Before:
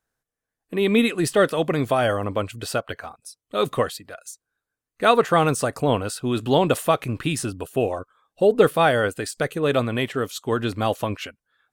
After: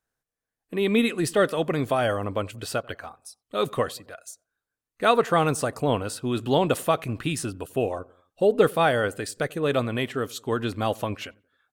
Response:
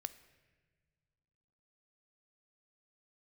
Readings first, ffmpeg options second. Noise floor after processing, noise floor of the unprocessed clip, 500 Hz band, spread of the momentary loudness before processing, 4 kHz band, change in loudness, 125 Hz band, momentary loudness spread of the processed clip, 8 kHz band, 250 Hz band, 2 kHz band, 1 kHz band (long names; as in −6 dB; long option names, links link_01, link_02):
below −85 dBFS, below −85 dBFS, −3.0 dB, 13 LU, −3.0 dB, −3.0 dB, −3.0 dB, 13 LU, −3.0 dB, −3.0 dB, −3.0 dB, −3.0 dB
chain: -filter_complex "[0:a]asplit=2[link_01][link_02];[link_02]adelay=90,lowpass=frequency=1200:poles=1,volume=-23.5dB,asplit=2[link_03][link_04];[link_04]adelay=90,lowpass=frequency=1200:poles=1,volume=0.53,asplit=2[link_05][link_06];[link_06]adelay=90,lowpass=frequency=1200:poles=1,volume=0.53[link_07];[link_01][link_03][link_05][link_07]amix=inputs=4:normalize=0,volume=-3dB"